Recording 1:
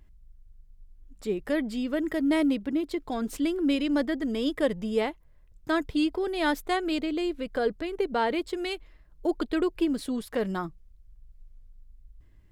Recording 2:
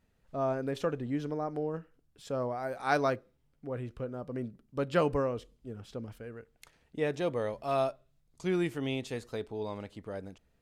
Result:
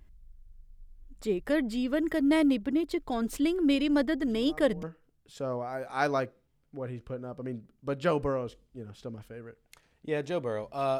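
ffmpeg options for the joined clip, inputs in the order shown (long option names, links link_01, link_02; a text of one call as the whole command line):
ffmpeg -i cue0.wav -i cue1.wav -filter_complex "[1:a]asplit=2[link_01][link_02];[0:a]apad=whole_dur=10.99,atrim=end=10.99,atrim=end=4.832[link_03];[link_02]atrim=start=1.728:end=7.89[link_04];[link_01]atrim=start=1.17:end=1.73,asetpts=PTS-STARTPTS,volume=-13.5dB,afade=type=in:duration=0.004:curve=hsin,afade=type=out:start_time=0.556:duration=0.004:curve=hsin,adelay=4270[link_05];[link_03][link_04]acrossfade=duration=0.004:curve1=hsin:curve2=hsin[link_06];[link_06][link_05]amix=inputs=2:normalize=0" out.wav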